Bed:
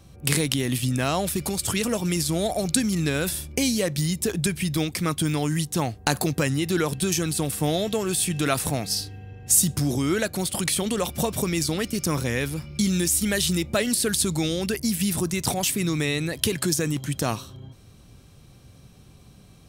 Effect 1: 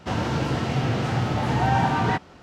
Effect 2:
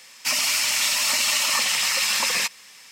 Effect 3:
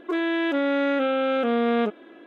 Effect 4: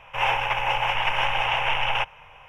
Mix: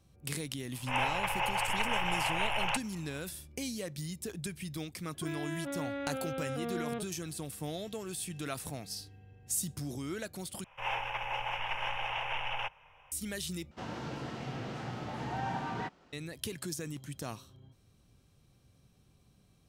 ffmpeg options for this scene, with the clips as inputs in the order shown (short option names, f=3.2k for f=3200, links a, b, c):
-filter_complex "[4:a]asplit=2[a][b];[0:a]volume=-15dB[c];[1:a]equalizer=f=88:t=o:w=0.82:g=-9[d];[c]asplit=3[e][f][g];[e]atrim=end=10.644[h];[b]atrim=end=2.48,asetpts=PTS-STARTPTS,volume=-12dB[i];[f]atrim=start=13.116:end=13.714[j];[d]atrim=end=2.42,asetpts=PTS-STARTPTS,volume=-14dB[k];[g]atrim=start=16.126[l];[a]atrim=end=2.48,asetpts=PTS-STARTPTS,volume=-8.5dB,afade=t=in:d=0.004:c=hsin,afade=t=out:st=2.476:d=0.004:c=hsin,adelay=730[m];[3:a]atrim=end=2.26,asetpts=PTS-STARTPTS,volume=-15dB,afade=t=in:d=0.004:c=hsin,afade=t=out:st=2.256:d=0.004:c=hsin,adelay=226233S[n];[h][i]acrossfade=d=0.004:c1=hsin:c2=hsin[o];[o][j]acrossfade=d=0.004:c1=hsin:c2=hsin[p];[p][k]acrossfade=d=0.004:c1=hsin:c2=hsin[q];[q][l]acrossfade=d=0.004:c1=hsin:c2=hsin[r];[r][m][n]amix=inputs=3:normalize=0"